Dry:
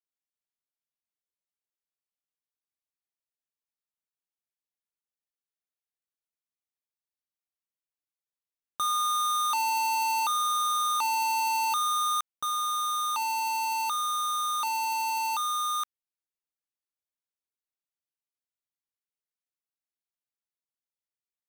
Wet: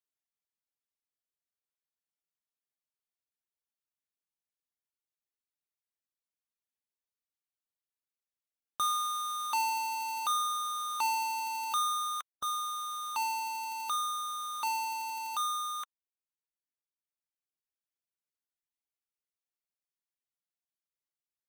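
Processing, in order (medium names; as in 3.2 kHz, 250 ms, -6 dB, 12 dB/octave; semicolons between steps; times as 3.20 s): reverb removal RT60 1.9 s; trim -1.5 dB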